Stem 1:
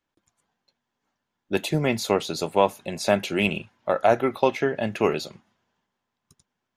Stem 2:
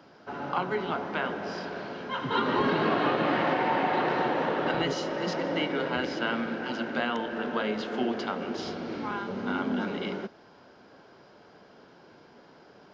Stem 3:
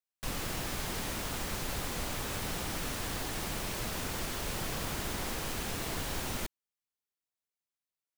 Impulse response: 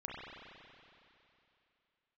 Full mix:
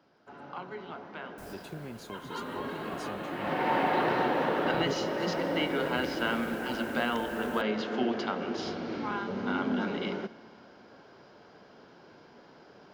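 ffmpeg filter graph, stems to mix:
-filter_complex "[0:a]acrossover=split=350[link_01][link_02];[link_02]acompressor=threshold=-33dB:ratio=6[link_03];[link_01][link_03]amix=inputs=2:normalize=0,acompressor=threshold=-24dB:ratio=6,volume=-13.5dB,asplit=2[link_04][link_05];[1:a]acontrast=78,volume=-8dB,afade=type=in:start_time=3.37:duration=0.35:silence=0.281838,asplit=2[link_06][link_07];[link_07]volume=-17.5dB[link_08];[2:a]highpass=43,equalizer=frequency=3200:width=0.62:gain=-11,adelay=1150,volume=-11dB[link_09];[link_05]apad=whole_len=411058[link_10];[link_09][link_10]sidechaincompress=threshold=-48dB:ratio=5:attack=43:release=1480[link_11];[3:a]atrim=start_sample=2205[link_12];[link_08][link_12]afir=irnorm=-1:irlink=0[link_13];[link_04][link_06][link_11][link_13]amix=inputs=4:normalize=0"

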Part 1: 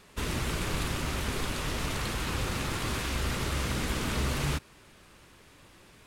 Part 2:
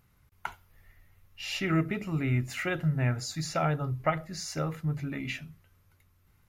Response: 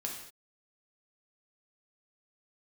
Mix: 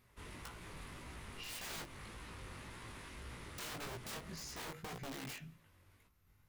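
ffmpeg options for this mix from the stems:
-filter_complex "[0:a]equalizer=frequency=1000:width_type=o:width=0.33:gain=4,equalizer=frequency=2000:width_type=o:width=0.33:gain=5,equalizer=frequency=10000:width_type=o:width=0.33:gain=11,asoftclip=type=tanh:threshold=-25.5dB,highshelf=frequency=8100:gain=-9.5,volume=-14.5dB[link_01];[1:a]aeval=exprs='(mod(31.6*val(0)+1,2)-1)/31.6':channel_layout=same,volume=-2.5dB,asplit=3[link_02][link_03][link_04];[link_02]atrim=end=1.84,asetpts=PTS-STARTPTS,afade=type=out:start_time=1.836:duration=0.004:curve=hsin[link_05];[link_03]atrim=start=1.84:end=3.58,asetpts=PTS-STARTPTS,volume=0[link_06];[link_04]atrim=start=3.58,asetpts=PTS-STARTPTS,afade=type=in:duration=0.004:curve=hsin[link_07];[link_05][link_06][link_07]concat=n=3:v=0:a=1,asplit=2[link_08][link_09];[link_09]volume=-24dB[link_10];[2:a]atrim=start_sample=2205[link_11];[link_10][link_11]afir=irnorm=-1:irlink=0[link_12];[link_01][link_08][link_12]amix=inputs=3:normalize=0,flanger=delay=16.5:depth=5.2:speed=1.8,asoftclip=type=hard:threshold=-33dB,alimiter=level_in=14.5dB:limit=-24dB:level=0:latency=1:release=194,volume=-14.5dB"

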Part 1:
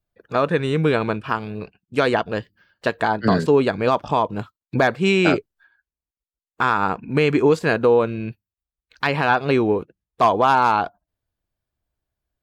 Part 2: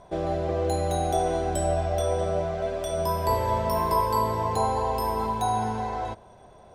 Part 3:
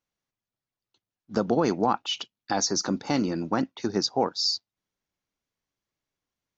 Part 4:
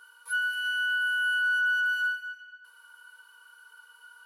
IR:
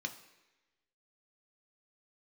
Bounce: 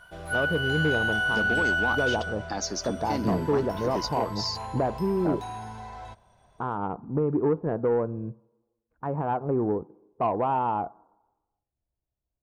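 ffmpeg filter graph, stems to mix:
-filter_complex "[0:a]lowpass=frequency=1000:width=0.5412,lowpass=frequency=1000:width=1.3066,volume=-6dB,asplit=2[link_01][link_02];[link_02]volume=-12.5dB[link_03];[1:a]acrossover=split=5800[link_04][link_05];[link_05]acompressor=threshold=-51dB:ratio=4:attack=1:release=60[link_06];[link_04][link_06]amix=inputs=2:normalize=0,equalizer=frequency=380:width=0.81:gain=-12,aeval=exprs='0.158*(cos(1*acos(clip(val(0)/0.158,-1,1)))-cos(1*PI/2))+0.0251*(cos(5*acos(clip(val(0)/0.158,-1,1)))-cos(5*PI/2))':channel_layout=same,volume=-10.5dB[link_07];[2:a]volume=-5.5dB[link_08];[3:a]equalizer=frequency=2100:width=1.3:gain=10,volume=-4dB[link_09];[4:a]atrim=start_sample=2205[link_10];[link_03][link_10]afir=irnorm=-1:irlink=0[link_11];[link_01][link_07][link_08][link_09][link_11]amix=inputs=5:normalize=0,asoftclip=type=tanh:threshold=-15.5dB"

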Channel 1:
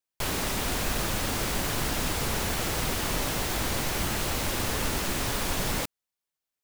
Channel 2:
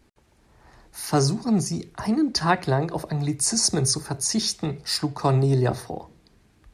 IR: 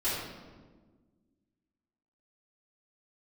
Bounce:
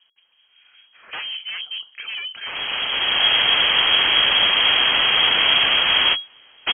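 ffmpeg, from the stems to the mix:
-filter_complex "[0:a]dynaudnorm=framelen=200:gausssize=7:maxgain=10.5dB,adelay=2350,volume=2.5dB[link_01];[1:a]acrossover=split=1700[link_02][link_03];[link_02]aeval=exprs='val(0)*(1-0.5/2+0.5/2*cos(2*PI*5.1*n/s))':channel_layout=same[link_04];[link_03]aeval=exprs='val(0)*(1-0.5/2-0.5/2*cos(2*PI*5.1*n/s))':channel_layout=same[link_05];[link_04][link_05]amix=inputs=2:normalize=0,highshelf=frequency=4700:gain=-7.5,aeval=exprs='0.0501*(abs(mod(val(0)/0.0501+3,4)-2)-1)':channel_layout=same,volume=1.5dB,asplit=2[link_06][link_07];[link_07]apad=whole_len=396374[link_08];[link_01][link_08]sidechaingate=range=-33dB:threshold=-48dB:ratio=16:detection=peak[link_09];[link_09][link_06]amix=inputs=2:normalize=0,lowpass=frequency=2800:width_type=q:width=0.5098,lowpass=frequency=2800:width_type=q:width=0.6013,lowpass=frequency=2800:width_type=q:width=0.9,lowpass=frequency=2800:width_type=q:width=2.563,afreqshift=-3300"

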